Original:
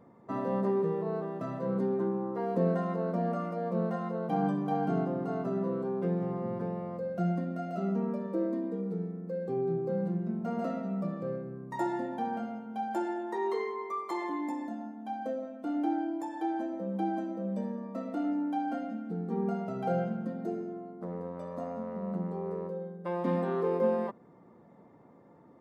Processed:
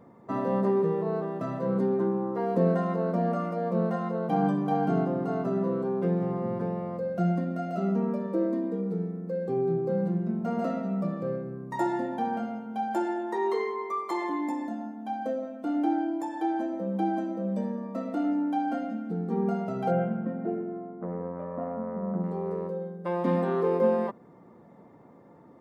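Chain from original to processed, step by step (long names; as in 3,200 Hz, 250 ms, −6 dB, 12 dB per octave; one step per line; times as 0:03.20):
0:19.90–0:22.22: low-pass filter 2,800 Hz → 1,800 Hz 24 dB per octave
level +4 dB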